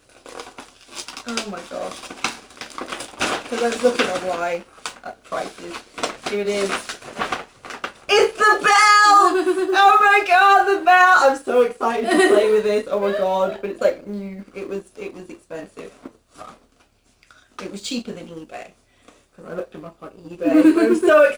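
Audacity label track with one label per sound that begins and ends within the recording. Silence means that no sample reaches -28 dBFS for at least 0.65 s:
17.590000	18.660000	sound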